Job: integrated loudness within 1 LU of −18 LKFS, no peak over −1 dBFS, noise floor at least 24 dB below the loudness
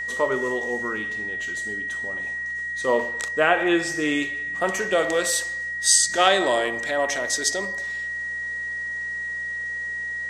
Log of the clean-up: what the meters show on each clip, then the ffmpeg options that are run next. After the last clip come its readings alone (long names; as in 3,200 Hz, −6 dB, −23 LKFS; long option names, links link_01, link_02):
mains hum 60 Hz; hum harmonics up to 240 Hz; level of the hum −50 dBFS; interfering tone 1,900 Hz; level of the tone −27 dBFS; integrated loudness −23.5 LKFS; sample peak −3.0 dBFS; target loudness −18.0 LKFS
→ -af "bandreject=frequency=60:width_type=h:width=4,bandreject=frequency=120:width_type=h:width=4,bandreject=frequency=180:width_type=h:width=4,bandreject=frequency=240:width_type=h:width=4"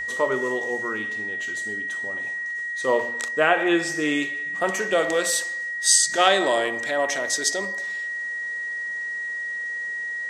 mains hum none found; interfering tone 1,900 Hz; level of the tone −27 dBFS
→ -af "bandreject=frequency=1900:width=30"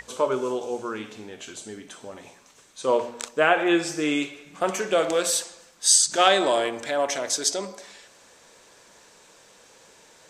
interfering tone none found; integrated loudness −23.0 LKFS; sample peak −3.0 dBFS; target loudness −18.0 LKFS
→ -af "volume=5dB,alimiter=limit=-1dB:level=0:latency=1"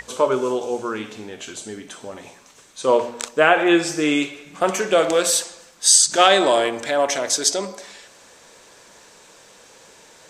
integrated loudness −18.5 LKFS; sample peak −1.0 dBFS; background noise floor −49 dBFS